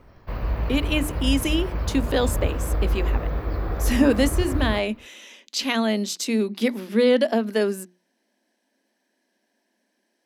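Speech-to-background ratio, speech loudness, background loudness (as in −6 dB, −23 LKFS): 4.0 dB, −24.0 LKFS, −28.0 LKFS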